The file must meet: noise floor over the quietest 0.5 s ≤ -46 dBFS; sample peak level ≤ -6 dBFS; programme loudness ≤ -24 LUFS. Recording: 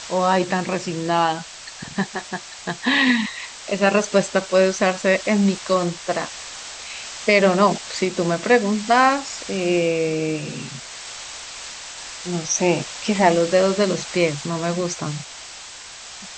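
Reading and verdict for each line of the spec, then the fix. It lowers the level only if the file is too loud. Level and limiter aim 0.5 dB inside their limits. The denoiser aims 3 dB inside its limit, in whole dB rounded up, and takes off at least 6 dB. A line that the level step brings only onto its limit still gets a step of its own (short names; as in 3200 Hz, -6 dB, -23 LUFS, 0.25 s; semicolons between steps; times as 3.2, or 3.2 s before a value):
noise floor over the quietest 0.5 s -38 dBFS: fail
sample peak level -3.0 dBFS: fail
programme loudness -20.5 LUFS: fail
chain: denoiser 7 dB, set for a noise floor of -38 dBFS; gain -4 dB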